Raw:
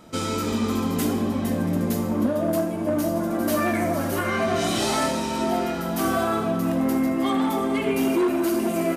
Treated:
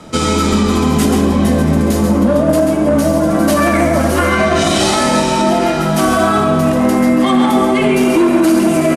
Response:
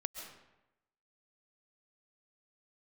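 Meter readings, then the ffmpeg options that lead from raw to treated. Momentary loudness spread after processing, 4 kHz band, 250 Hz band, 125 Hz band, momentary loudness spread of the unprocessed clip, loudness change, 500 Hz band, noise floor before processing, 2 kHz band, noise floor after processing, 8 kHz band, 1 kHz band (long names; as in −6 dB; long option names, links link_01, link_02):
2 LU, +11.5 dB, +11.0 dB, +12.5 dB, 3 LU, +11.0 dB, +11.0 dB, −27 dBFS, +11.5 dB, −15 dBFS, +11.0 dB, +11.5 dB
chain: -af "afreqshift=-17,lowpass=frequency=11000:width=0.5412,lowpass=frequency=11000:width=1.3066,aecho=1:1:135:0.447,alimiter=level_in=15dB:limit=-1dB:release=50:level=0:latency=1,volume=-2.5dB"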